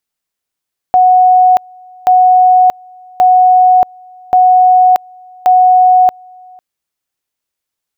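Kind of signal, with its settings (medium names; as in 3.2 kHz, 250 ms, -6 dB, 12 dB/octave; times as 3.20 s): two-level tone 736 Hz -3.5 dBFS, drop 30 dB, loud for 0.63 s, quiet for 0.50 s, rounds 5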